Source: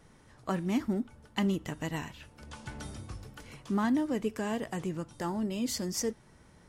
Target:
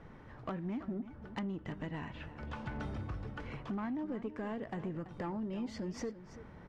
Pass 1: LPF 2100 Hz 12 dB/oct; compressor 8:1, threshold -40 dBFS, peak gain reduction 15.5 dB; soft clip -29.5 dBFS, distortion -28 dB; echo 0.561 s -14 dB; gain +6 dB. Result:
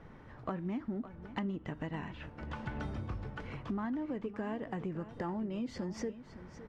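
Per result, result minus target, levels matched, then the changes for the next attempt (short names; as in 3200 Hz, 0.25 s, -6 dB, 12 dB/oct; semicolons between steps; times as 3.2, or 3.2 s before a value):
echo 0.228 s late; soft clip: distortion -11 dB
change: echo 0.333 s -14 dB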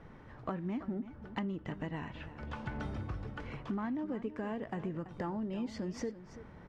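soft clip: distortion -11 dB
change: soft clip -37 dBFS, distortion -17 dB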